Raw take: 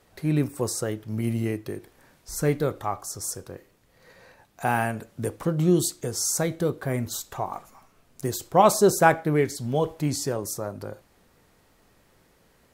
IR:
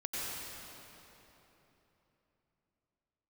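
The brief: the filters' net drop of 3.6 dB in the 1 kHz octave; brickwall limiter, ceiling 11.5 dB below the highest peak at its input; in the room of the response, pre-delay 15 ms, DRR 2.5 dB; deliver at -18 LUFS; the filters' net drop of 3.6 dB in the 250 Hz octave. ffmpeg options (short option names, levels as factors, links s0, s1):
-filter_complex "[0:a]equalizer=f=250:t=o:g=-5.5,equalizer=f=1000:t=o:g=-4.5,alimiter=limit=0.141:level=0:latency=1,asplit=2[s0][s1];[1:a]atrim=start_sample=2205,adelay=15[s2];[s1][s2]afir=irnorm=-1:irlink=0,volume=0.447[s3];[s0][s3]amix=inputs=2:normalize=0,volume=3.35"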